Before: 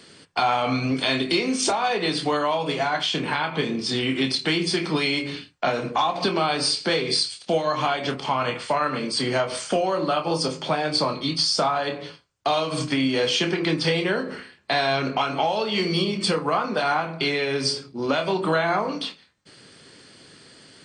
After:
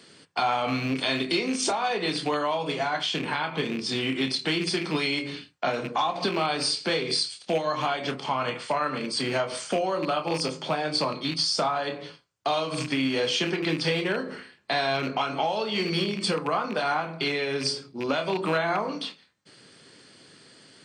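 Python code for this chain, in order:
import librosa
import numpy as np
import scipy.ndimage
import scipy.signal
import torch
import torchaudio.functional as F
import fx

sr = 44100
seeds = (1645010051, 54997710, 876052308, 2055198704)

y = fx.rattle_buzz(x, sr, strikes_db=-29.0, level_db=-21.0)
y = scipy.signal.sosfilt(scipy.signal.butter(2, 99.0, 'highpass', fs=sr, output='sos'), y)
y = y * 10.0 ** (-3.5 / 20.0)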